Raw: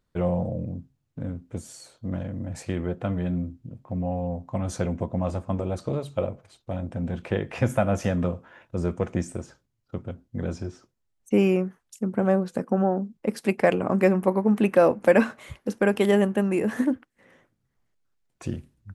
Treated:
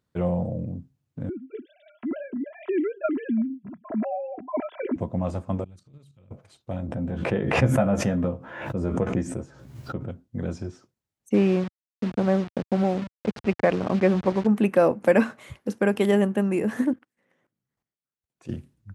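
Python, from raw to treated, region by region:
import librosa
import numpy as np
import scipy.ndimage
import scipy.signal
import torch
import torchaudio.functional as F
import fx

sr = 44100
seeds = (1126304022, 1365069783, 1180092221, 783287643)

y = fx.chain(x, sr, fx.sine_speech(),
    fx.comb(ms=3.0, depth=0.77), at=(1.29, 4.96))
y = fx.chain(y, sr, fx.tone_stack(knobs='6-0-2'),
    fx.transient(attack_db=-7, sustain_db=6),
    fx.level_steps(step_db=9), at=(5.64, 6.31))
y = fx.chain(y, sr, fx.high_shelf(hz=2400.0, db=-9.0),
    fx.doubler(ms=15.0, db=-5.5),
    fx.pre_swell(db_per_s=53.0), at=(6.87, 10.09))
y = fx.chain(y, sr, fx.delta_hold(step_db=-29.0),
    fx.lowpass(hz=3900.0, slope=12), at=(11.34, 14.47))
y = fx.chain(y, sr, fx.peak_eq(hz=82.0, db=-13.5, octaves=0.6),
    fx.level_steps(step_db=14), at=(16.93, 18.5))
y = scipy.signal.sosfilt(scipy.signal.butter(2, 94.0, 'highpass', fs=sr, output='sos'), y)
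y = fx.low_shelf(y, sr, hz=180.0, db=5.0)
y = y * librosa.db_to_amplitude(-1.5)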